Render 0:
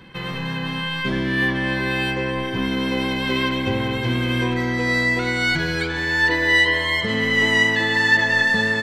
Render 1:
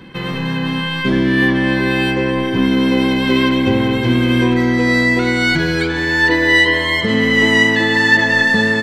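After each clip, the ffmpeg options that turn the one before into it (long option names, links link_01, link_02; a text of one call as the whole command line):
ffmpeg -i in.wav -af "equalizer=frequency=280:width=1.1:gain=6.5,volume=4dB" out.wav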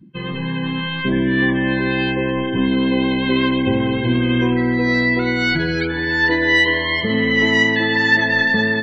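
ffmpeg -i in.wav -af "areverse,acompressor=mode=upward:threshold=-24dB:ratio=2.5,areverse,afftdn=noise_reduction=31:noise_floor=-26,volume=-3dB" out.wav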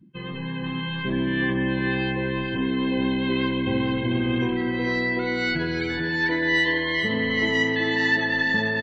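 ffmpeg -i in.wav -af "aecho=1:1:444|888|1332:0.501|0.125|0.0313,volume=-7.5dB" out.wav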